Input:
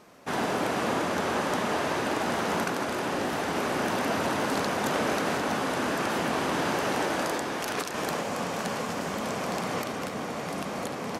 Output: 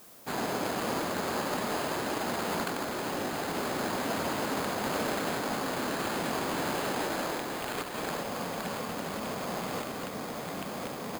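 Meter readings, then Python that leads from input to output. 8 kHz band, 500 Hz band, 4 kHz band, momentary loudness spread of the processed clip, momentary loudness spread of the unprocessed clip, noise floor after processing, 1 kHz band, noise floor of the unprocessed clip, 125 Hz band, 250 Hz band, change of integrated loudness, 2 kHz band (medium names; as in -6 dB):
-2.0 dB, -4.0 dB, -2.5 dB, 5 LU, 5 LU, -39 dBFS, -4.0 dB, -35 dBFS, -4.0 dB, -4.0 dB, -4.0 dB, -5.0 dB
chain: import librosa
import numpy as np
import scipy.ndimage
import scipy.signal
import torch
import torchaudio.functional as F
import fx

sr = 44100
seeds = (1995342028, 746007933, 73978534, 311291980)

y = fx.sample_hold(x, sr, seeds[0], rate_hz=5700.0, jitter_pct=0)
y = fx.dmg_noise_colour(y, sr, seeds[1], colour='blue', level_db=-50.0)
y = y * 10.0 ** (-4.0 / 20.0)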